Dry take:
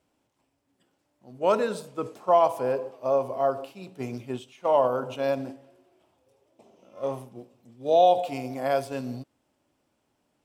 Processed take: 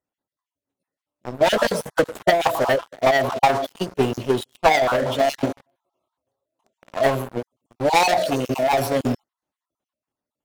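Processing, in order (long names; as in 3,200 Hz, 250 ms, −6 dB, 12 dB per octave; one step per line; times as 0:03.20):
time-frequency cells dropped at random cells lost 34%
leveller curve on the samples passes 5
formants moved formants +3 semitones
transient designer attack +8 dB, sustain +4 dB
level −6 dB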